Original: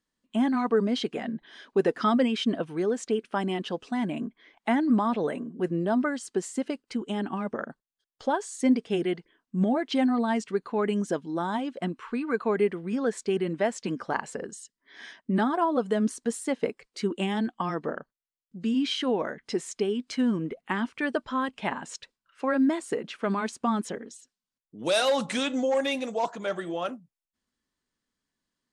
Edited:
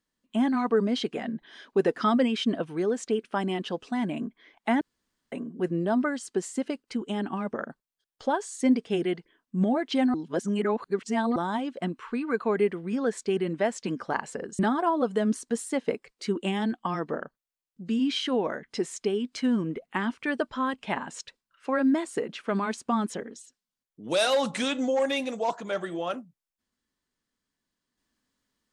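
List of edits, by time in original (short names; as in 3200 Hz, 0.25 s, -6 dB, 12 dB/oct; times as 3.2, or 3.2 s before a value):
4.81–5.32 room tone
10.14–11.36 reverse
14.59–15.34 cut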